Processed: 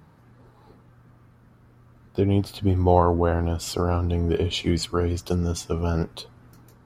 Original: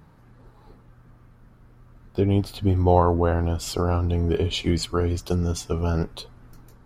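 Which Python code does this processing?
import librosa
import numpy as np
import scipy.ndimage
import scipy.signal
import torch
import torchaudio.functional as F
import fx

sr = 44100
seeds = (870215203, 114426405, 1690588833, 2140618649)

y = scipy.signal.sosfilt(scipy.signal.butter(2, 65.0, 'highpass', fs=sr, output='sos'), x)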